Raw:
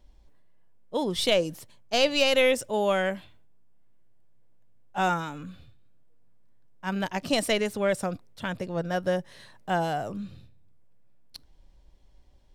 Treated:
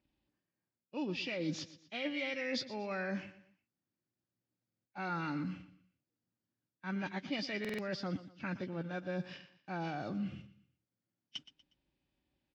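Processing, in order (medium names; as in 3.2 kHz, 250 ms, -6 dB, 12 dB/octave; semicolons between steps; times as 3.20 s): knee-point frequency compression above 1.5 kHz 1.5:1; peaking EQ 5.5 kHz -7 dB 0.44 oct; gate -47 dBFS, range -15 dB; reverse; compression 6:1, threshold -37 dBFS, peak gain reduction 17.5 dB; reverse; cabinet simulation 140–7000 Hz, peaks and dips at 300 Hz +4 dB, 460 Hz -9 dB, 670 Hz -8 dB, 1 kHz -7 dB, 5.2 kHz +8 dB; on a send: feedback delay 120 ms, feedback 37%, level -15.5 dB; on the sum: buffer glitch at 4.67/7.60 s, samples 2048, times 3; trim +3.5 dB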